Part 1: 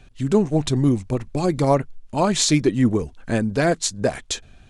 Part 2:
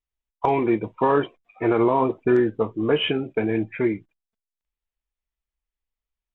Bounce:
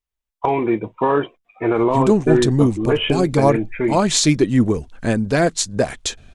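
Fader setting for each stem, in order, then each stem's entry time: +2.5, +2.0 dB; 1.75, 0.00 s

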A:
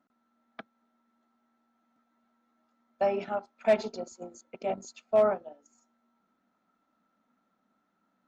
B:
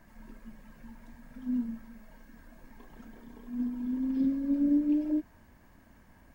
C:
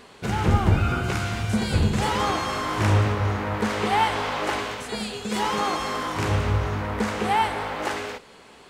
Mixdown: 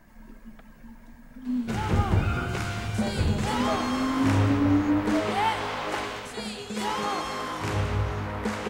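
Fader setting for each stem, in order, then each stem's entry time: -10.0, +2.5, -4.0 dB; 0.00, 0.00, 1.45 s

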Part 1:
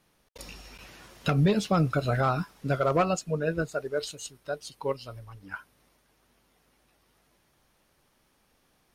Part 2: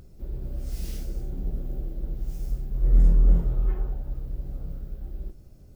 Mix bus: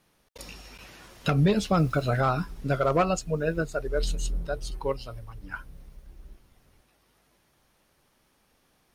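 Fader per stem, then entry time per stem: +1.0, -12.5 dB; 0.00, 1.05 s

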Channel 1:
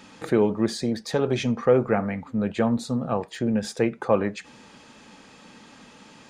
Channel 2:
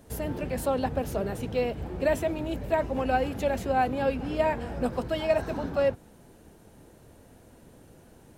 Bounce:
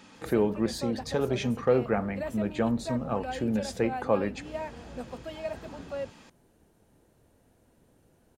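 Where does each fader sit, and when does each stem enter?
-4.5, -10.5 dB; 0.00, 0.15 s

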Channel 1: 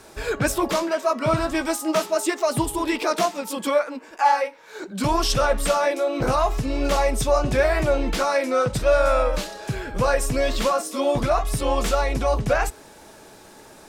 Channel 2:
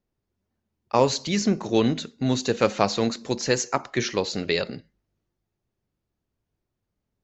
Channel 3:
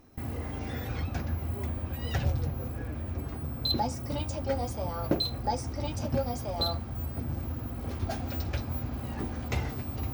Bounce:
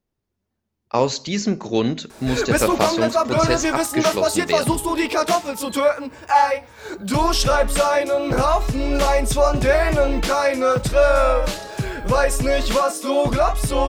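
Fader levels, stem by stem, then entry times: +3.0, +1.0, -16.0 dB; 2.10, 0.00, 2.00 s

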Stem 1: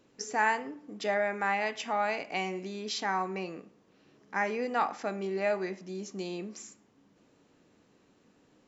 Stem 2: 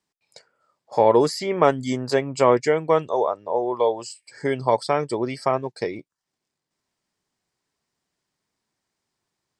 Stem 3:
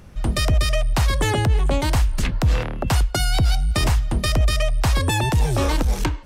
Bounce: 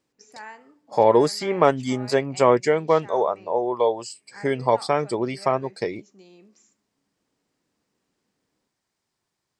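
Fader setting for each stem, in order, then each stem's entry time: -13.5 dB, 0.0 dB, off; 0.00 s, 0.00 s, off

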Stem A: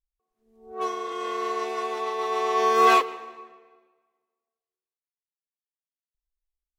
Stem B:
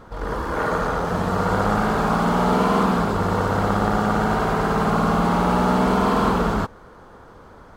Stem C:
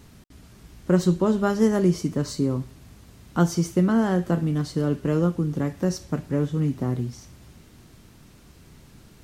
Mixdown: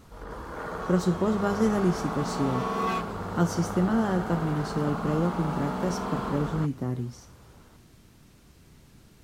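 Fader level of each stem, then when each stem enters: -12.5, -13.0, -4.5 dB; 0.00, 0.00, 0.00 s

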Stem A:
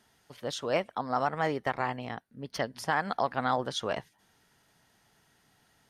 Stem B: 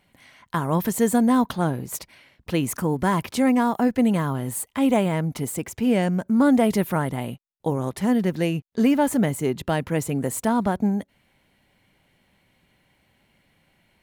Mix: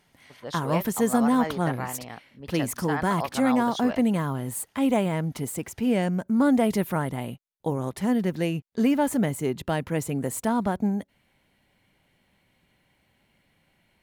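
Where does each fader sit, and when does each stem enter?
-2.5, -3.0 dB; 0.00, 0.00 s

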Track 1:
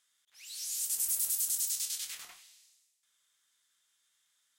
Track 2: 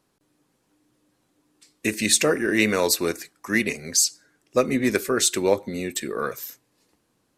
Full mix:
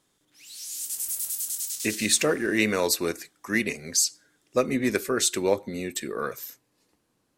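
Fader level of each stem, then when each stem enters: +1.0, -3.0 dB; 0.00, 0.00 s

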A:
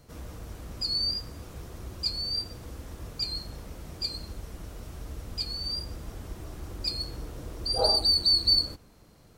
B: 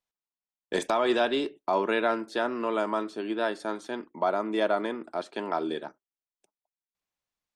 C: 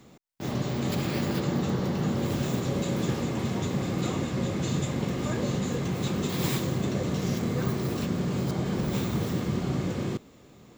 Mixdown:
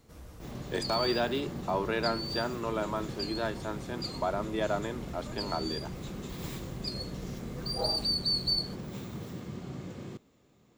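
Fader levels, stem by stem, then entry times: -7.0, -5.0, -12.0 dB; 0.00, 0.00, 0.00 s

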